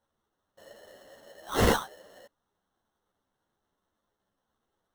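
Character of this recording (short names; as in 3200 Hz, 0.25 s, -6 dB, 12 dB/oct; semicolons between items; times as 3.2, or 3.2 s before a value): aliases and images of a low sample rate 2400 Hz, jitter 0%; a shimmering, thickened sound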